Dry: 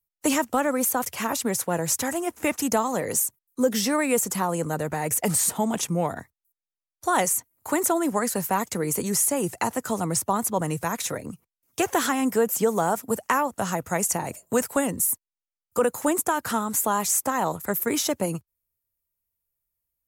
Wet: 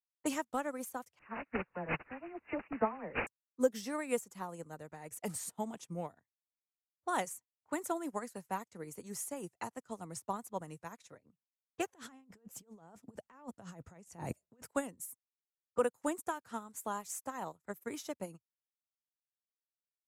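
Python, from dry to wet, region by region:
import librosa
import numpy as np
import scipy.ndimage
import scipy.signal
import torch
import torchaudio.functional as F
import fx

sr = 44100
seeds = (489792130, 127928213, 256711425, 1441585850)

y = fx.chain(x, sr, fx.zero_step(step_db=-37.5),
    fx.dispersion(late='lows', ms=91.0, hz=1700.0),
    fx.resample_bad(factor=8, down='none', up='filtered'), at=(1.19, 3.27))
y = fx.chain(y, sr, fx.low_shelf(hz=320.0, db=9.0),
    fx.over_compress(threshold_db=-29.0, ratio=-1.0), at=(11.94, 14.71))
y = fx.env_lowpass(y, sr, base_hz=1300.0, full_db=-22.0)
y = fx.high_shelf(y, sr, hz=11000.0, db=-6.0)
y = fx.upward_expand(y, sr, threshold_db=-38.0, expansion=2.5)
y = y * 10.0 ** (-5.5 / 20.0)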